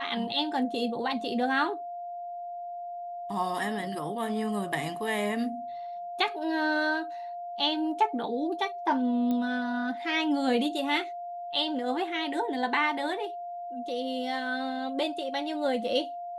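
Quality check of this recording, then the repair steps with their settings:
whine 700 Hz -35 dBFS
9.31 s: pop -20 dBFS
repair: de-click; band-stop 700 Hz, Q 30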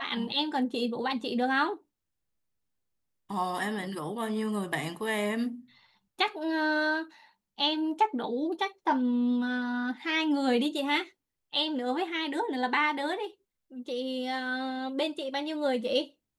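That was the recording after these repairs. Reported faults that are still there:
nothing left

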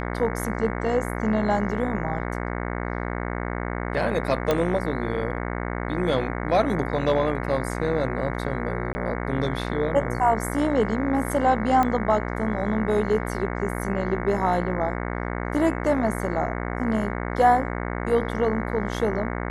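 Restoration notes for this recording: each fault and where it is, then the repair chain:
buzz 60 Hz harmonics 37 -29 dBFS
4.51 s: pop -9 dBFS
8.93–8.95 s: dropout 20 ms
11.83 s: pop -11 dBFS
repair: de-click; de-hum 60 Hz, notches 37; interpolate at 8.93 s, 20 ms

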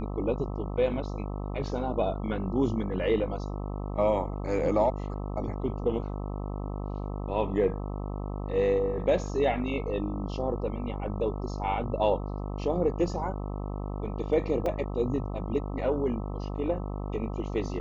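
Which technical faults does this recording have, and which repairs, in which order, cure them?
buzz 50 Hz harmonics 26 -34 dBFS
14.66 s: dropout 3.2 ms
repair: de-hum 50 Hz, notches 26; interpolate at 14.66 s, 3.2 ms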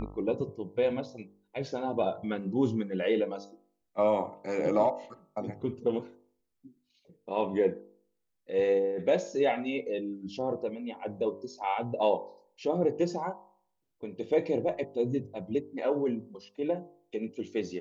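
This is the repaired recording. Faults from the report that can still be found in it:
nothing left

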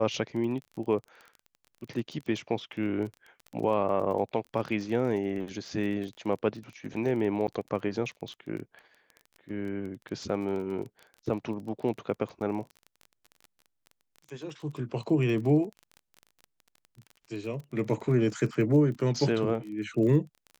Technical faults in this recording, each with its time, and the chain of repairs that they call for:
crackle 22 per s -37 dBFS
7.47–7.48 s: dropout 9.3 ms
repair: de-click; interpolate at 7.47 s, 9.3 ms

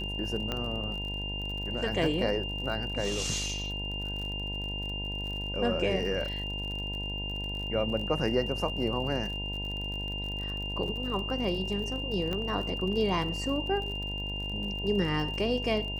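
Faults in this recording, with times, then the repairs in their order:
buzz 50 Hz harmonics 20 -37 dBFS
crackle 45 per s -37 dBFS
whine 2.8 kHz -35 dBFS
0.52 s: pop -18 dBFS
12.33 s: pop -20 dBFS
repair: de-click; de-hum 50 Hz, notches 20; band-stop 2.8 kHz, Q 30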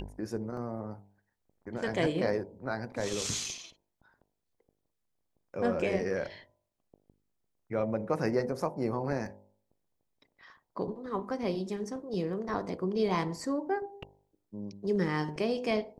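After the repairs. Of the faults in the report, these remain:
12.33 s: pop

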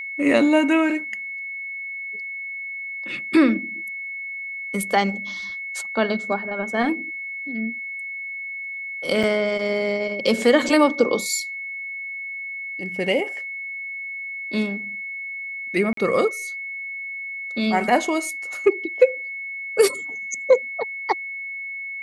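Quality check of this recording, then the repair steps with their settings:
whine 2.2 kHz -29 dBFS
9.23–9.24 s: dropout 5.4 ms
15.93–15.97 s: dropout 43 ms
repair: band-stop 2.2 kHz, Q 30; interpolate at 9.23 s, 5.4 ms; interpolate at 15.93 s, 43 ms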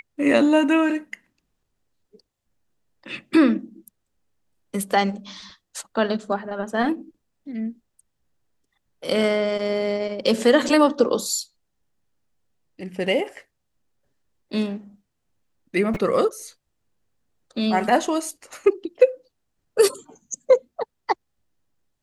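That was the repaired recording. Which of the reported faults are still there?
nothing left

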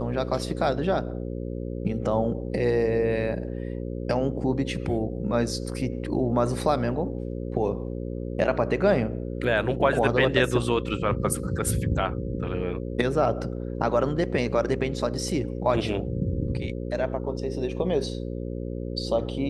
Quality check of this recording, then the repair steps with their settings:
buzz 60 Hz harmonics 9 -32 dBFS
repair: de-hum 60 Hz, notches 9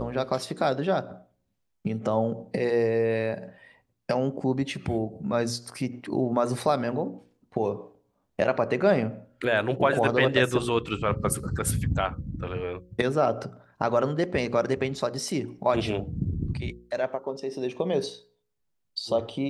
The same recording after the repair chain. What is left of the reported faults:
nothing left

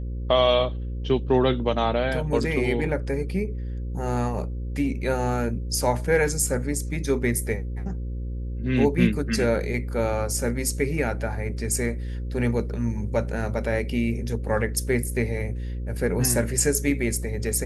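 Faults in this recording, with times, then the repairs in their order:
buzz 60 Hz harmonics 9 -30 dBFS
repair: de-hum 60 Hz, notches 9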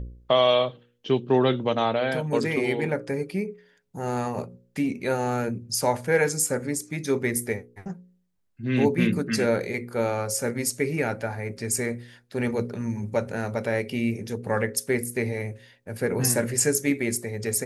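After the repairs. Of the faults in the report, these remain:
nothing left

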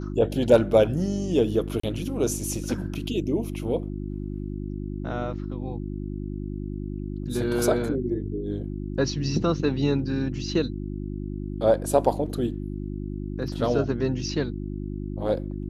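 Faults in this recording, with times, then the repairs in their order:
hum 50 Hz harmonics 7 -32 dBFS
1.80–1.83 s: dropout 34 ms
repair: de-hum 50 Hz, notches 7; interpolate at 1.80 s, 34 ms

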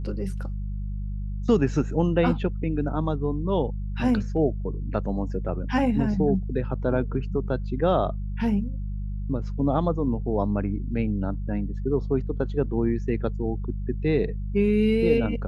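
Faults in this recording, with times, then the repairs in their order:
hum 50 Hz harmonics 4 -30 dBFS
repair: de-hum 50 Hz, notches 4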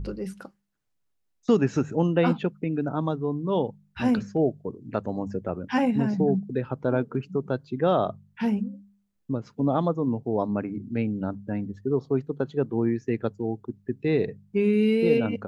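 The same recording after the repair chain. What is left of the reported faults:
nothing left

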